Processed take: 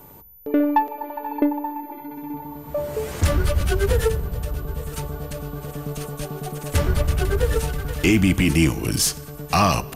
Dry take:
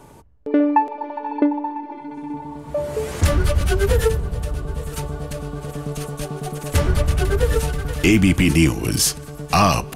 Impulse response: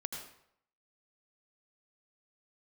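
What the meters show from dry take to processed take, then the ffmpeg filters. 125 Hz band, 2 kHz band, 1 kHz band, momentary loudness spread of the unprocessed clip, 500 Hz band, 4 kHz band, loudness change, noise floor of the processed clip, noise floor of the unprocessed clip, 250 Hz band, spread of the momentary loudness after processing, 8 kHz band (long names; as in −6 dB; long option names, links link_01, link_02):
−2.5 dB, −2.0 dB, −2.5 dB, 14 LU, −2.5 dB, −2.0 dB, −2.5 dB, −40 dBFS, −38 dBFS, −2.5 dB, 14 LU, −2.0 dB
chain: -filter_complex "[0:a]aeval=exprs='0.631*(cos(1*acos(clip(val(0)/0.631,-1,1)))-cos(1*PI/2))+0.0141*(cos(6*acos(clip(val(0)/0.631,-1,1)))-cos(6*PI/2))':channel_layout=same,aeval=exprs='val(0)+0.00631*sin(2*PI*14000*n/s)':channel_layout=same,asplit=2[link_01][link_02];[1:a]atrim=start_sample=2205[link_03];[link_02][link_03]afir=irnorm=-1:irlink=0,volume=-19dB[link_04];[link_01][link_04]amix=inputs=2:normalize=0,volume=-3dB"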